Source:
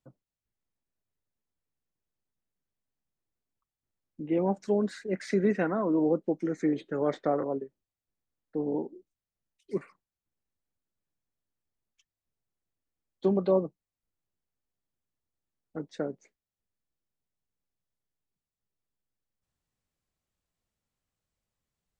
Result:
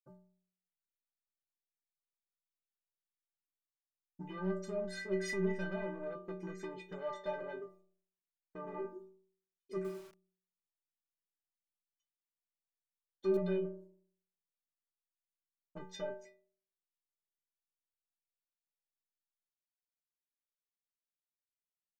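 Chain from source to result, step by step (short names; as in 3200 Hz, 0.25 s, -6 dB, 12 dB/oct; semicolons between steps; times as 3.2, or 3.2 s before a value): expander -51 dBFS; de-hum 116.5 Hz, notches 9; dynamic EQ 570 Hz, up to +5 dB, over -41 dBFS, Q 2.2; compressor 8:1, threshold -32 dBFS, peak gain reduction 16 dB; soft clip -35.5 dBFS, distortion -10 dB; metallic resonator 180 Hz, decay 0.67 s, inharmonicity 0.03; 9.75–13.37 lo-fi delay 97 ms, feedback 35%, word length 12-bit, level -6 dB; gain +18 dB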